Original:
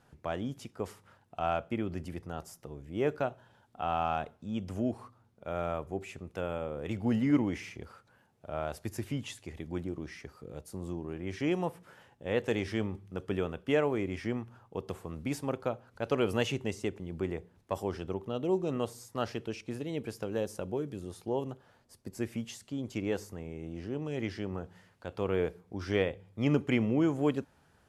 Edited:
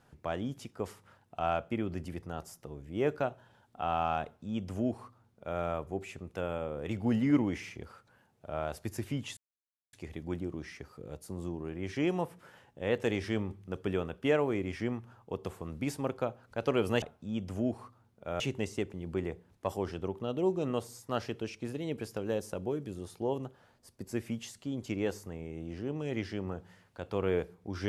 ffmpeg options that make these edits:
-filter_complex "[0:a]asplit=4[a][b][c][d];[a]atrim=end=9.37,asetpts=PTS-STARTPTS,afade=t=out:st=9.366:d=0.004:c=hsin,apad=pad_dur=0.56[e];[b]atrim=start=9.37:end=16.462,asetpts=PTS-STARTPTS,afade=t=in:d=0.004:c=hsin[f];[c]atrim=start=4.218:end=5.602[g];[d]atrim=start=16.458[h];[e][f]concat=n=2:v=0:a=1[i];[i][g]acrossfade=d=0.004:c1=hsin:c2=hsin[j];[j][h]acrossfade=d=0.004:c1=hsin:c2=hsin"

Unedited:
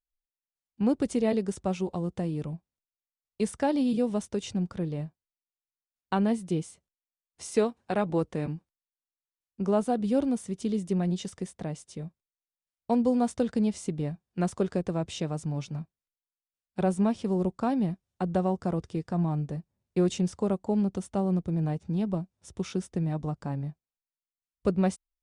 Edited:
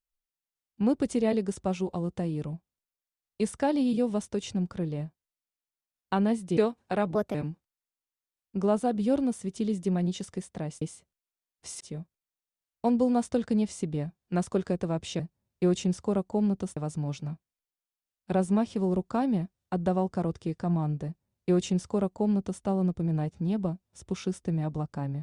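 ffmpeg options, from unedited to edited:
-filter_complex "[0:a]asplit=8[a][b][c][d][e][f][g][h];[a]atrim=end=6.572[i];[b]atrim=start=7.558:end=8.144[j];[c]atrim=start=8.14:end=8.39,asetpts=PTS-STARTPTS,asetrate=56448,aresample=44100,atrim=end_sample=8613,asetpts=PTS-STARTPTS[k];[d]atrim=start=8.386:end=11.862[l];[e]atrim=start=6.568:end=7.562[m];[f]atrim=start=11.858:end=15.252[n];[g]atrim=start=19.538:end=21.112[o];[h]atrim=start=15.248[p];[i][j]acrossfade=d=0.004:c1=hsin:c2=hsin[q];[q][k]acrossfade=d=0.004:c1=hsin:c2=hsin[r];[r][l]acrossfade=d=0.004:c1=hsin:c2=hsin[s];[s][m]acrossfade=d=0.004:c1=hsin:c2=hsin[t];[t][n]acrossfade=d=0.004:c1=hsin:c2=hsin[u];[u][o]acrossfade=d=0.004:c1=hsin:c2=hsin[v];[v][p]acrossfade=d=0.004:c1=hsin:c2=hsin"

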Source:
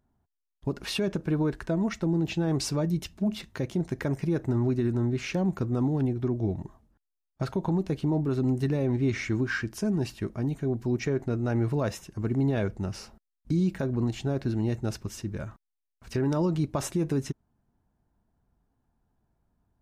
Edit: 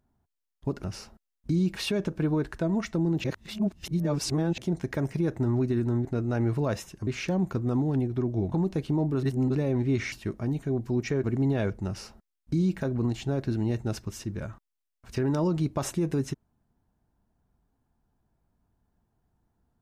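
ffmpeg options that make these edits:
-filter_complex "[0:a]asplit=12[a][b][c][d][e][f][g][h][i][j][k][l];[a]atrim=end=0.842[m];[b]atrim=start=12.848:end=13.772[n];[c]atrim=start=0.838:end=2.322[o];[d]atrim=start=2.318:end=3.662,asetpts=PTS-STARTPTS,areverse[p];[e]atrim=start=3.658:end=5.132[q];[f]atrim=start=11.198:end=12.222[r];[g]atrim=start=5.128:end=6.582[s];[h]atrim=start=7.658:end=8.372[t];[i]atrim=start=8.368:end=8.692,asetpts=PTS-STARTPTS,areverse[u];[j]atrim=start=8.688:end=9.262[v];[k]atrim=start=10.078:end=11.202[w];[l]atrim=start=12.218[x];[m][n]acrossfade=d=0.004:c1=hsin:c2=hsin[y];[y][o]acrossfade=d=0.004:c1=hsin:c2=hsin[z];[z][p]acrossfade=d=0.004:c1=hsin:c2=hsin[aa];[aa][q]acrossfade=d=0.004:c1=hsin:c2=hsin[ab];[ab][r]acrossfade=d=0.004:c1=hsin:c2=hsin[ac];[ac][s]acrossfade=d=0.004:c1=hsin:c2=hsin[ad];[ad][t]acrossfade=d=0.004:c1=hsin:c2=hsin[ae];[ae][u]acrossfade=d=0.004:c1=hsin:c2=hsin[af];[af][v]acrossfade=d=0.004:c1=hsin:c2=hsin[ag];[ag][w]acrossfade=d=0.004:c1=hsin:c2=hsin[ah];[ah][x]acrossfade=d=0.004:c1=hsin:c2=hsin"

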